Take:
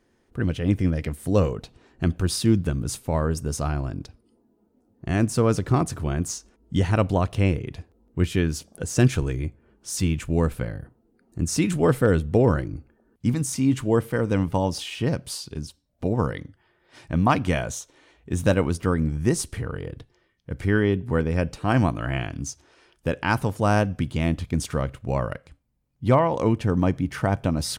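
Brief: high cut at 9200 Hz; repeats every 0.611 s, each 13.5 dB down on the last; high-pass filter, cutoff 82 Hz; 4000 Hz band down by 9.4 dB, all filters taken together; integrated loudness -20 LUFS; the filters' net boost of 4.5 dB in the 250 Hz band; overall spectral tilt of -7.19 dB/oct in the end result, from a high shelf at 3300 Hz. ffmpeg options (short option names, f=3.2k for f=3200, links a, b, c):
-af "highpass=82,lowpass=9.2k,equalizer=f=250:t=o:g=6,highshelf=f=3.3k:g=-6.5,equalizer=f=4k:t=o:g=-8,aecho=1:1:611|1222:0.211|0.0444,volume=2.5dB"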